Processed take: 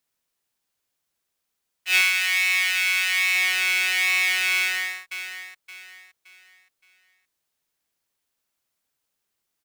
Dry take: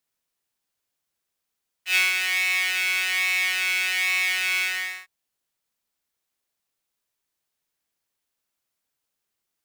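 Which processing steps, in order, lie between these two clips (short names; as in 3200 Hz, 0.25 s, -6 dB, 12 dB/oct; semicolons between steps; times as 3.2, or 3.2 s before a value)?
2.01–3.35 HPF 920 Hz 12 dB/oct; 4.54–4.97 echo throw 0.57 s, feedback 35%, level -10 dB; gain +2 dB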